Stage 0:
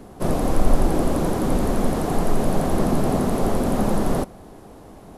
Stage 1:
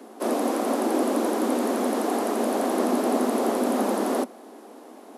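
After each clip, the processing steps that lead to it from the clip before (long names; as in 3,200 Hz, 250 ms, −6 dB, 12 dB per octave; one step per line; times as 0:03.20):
Butterworth high-pass 220 Hz 96 dB per octave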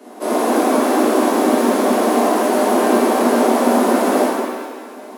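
reverb with rising layers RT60 1.3 s, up +7 semitones, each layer −8 dB, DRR −8 dB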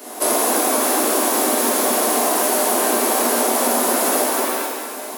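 RIAA equalisation recording
downward compressor 6 to 1, threshold −20 dBFS, peak gain reduction 8.5 dB
level +5 dB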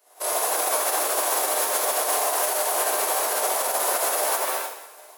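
high-pass filter 490 Hz 24 dB per octave
brickwall limiter −12 dBFS, peak gain reduction 7.5 dB
expander for the loud parts 2.5 to 1, over −37 dBFS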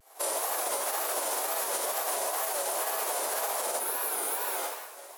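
healed spectral selection 0:03.81–0:04.60, 480–9,200 Hz after
downward compressor, threshold −28 dBFS, peak gain reduction 9 dB
tape wow and flutter 150 cents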